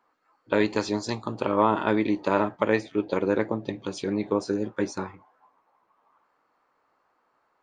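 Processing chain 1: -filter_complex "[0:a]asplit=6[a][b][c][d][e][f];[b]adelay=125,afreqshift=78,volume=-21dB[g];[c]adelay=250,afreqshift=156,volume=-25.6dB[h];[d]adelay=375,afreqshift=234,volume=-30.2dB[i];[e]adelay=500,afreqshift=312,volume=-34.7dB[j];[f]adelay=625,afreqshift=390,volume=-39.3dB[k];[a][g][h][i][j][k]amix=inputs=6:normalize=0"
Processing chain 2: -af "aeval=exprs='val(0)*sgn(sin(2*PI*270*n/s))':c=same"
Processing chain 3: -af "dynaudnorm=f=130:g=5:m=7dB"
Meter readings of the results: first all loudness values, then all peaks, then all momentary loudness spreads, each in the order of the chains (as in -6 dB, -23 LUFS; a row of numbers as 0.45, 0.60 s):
-26.5, -26.5, -21.5 LUFS; -7.0, -7.0, -2.5 dBFS; 8, 9, 7 LU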